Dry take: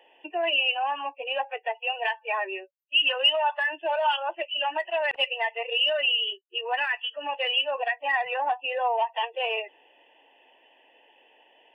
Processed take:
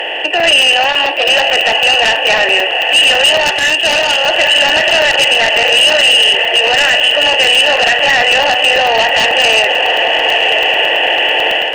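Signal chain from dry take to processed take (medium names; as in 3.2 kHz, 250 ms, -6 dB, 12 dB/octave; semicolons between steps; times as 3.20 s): spectral levelling over time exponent 0.4; 3.45–4.01 s: treble shelf 2.6 kHz +11 dB; echo that smears into a reverb 1002 ms, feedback 45%, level -7.5 dB; crackle 94 per s -51 dBFS; in parallel at -11.5 dB: sine folder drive 14 dB, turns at -1 dBFS; on the sum: peaking EQ 1 kHz -13 dB 0.4 oct; level rider; loudness maximiser +4 dB; crackling interface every 0.11 s, samples 128, zero, from 0.40 s; 0.88–1.29 s: transformer saturation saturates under 830 Hz; trim -2 dB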